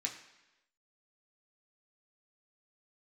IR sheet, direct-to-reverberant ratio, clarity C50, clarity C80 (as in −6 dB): −0.5 dB, 9.0 dB, 11.0 dB